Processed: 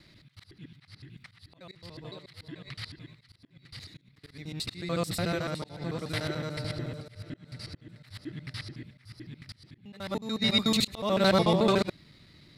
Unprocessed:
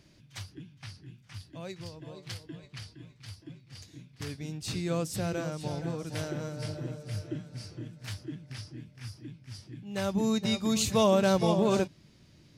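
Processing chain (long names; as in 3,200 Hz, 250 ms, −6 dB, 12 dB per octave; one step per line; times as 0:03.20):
reversed piece by piece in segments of 73 ms
thirty-one-band graphic EQ 1,250 Hz +6 dB, 2,000 Hz +10 dB, 4,000 Hz +12 dB, 6,300 Hz −9 dB
volume swells 303 ms
level +1.5 dB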